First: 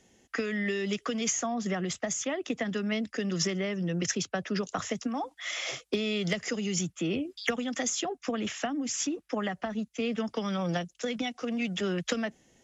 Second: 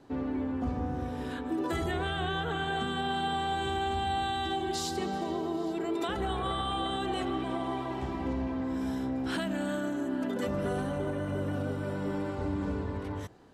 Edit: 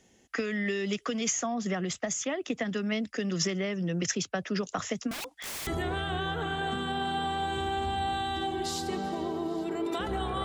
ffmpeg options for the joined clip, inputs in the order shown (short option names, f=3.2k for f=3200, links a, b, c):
-filter_complex "[0:a]asettb=1/sr,asplit=3[a][b][c];[a]atrim=end=5.114[d];[b]atrim=start=5.11:end=5.67,asetpts=PTS-STARTPTS,afade=t=in:d=0.004:c=qsin,afade=t=out:st=0.556:d=0.004:c=qsin,aeval=exprs='(mod(42.2*val(0)+1,2)-1)/42.2':c=same[e];[c]atrim=start=5.666[f];[d][e]acrossfade=d=0.004:c1=hsin:c2=qsin[g];[g][f]acrossfade=d=0.004:c1=qsin:c2=hsin,apad=whole_dur=10.44,atrim=end=10.44,atrim=end=5.672[h];[1:a]atrim=start=1.758:end=6.53[i];[h][i]acrossfade=d=0.004:c1=hsin:c2=hsin"